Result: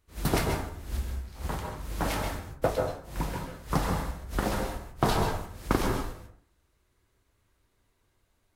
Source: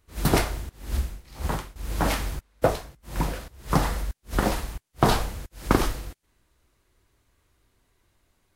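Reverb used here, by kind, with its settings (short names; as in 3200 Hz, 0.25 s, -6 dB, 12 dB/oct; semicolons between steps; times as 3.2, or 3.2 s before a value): plate-style reverb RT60 0.56 s, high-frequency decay 0.4×, pre-delay 0.12 s, DRR 3 dB; gain -5.5 dB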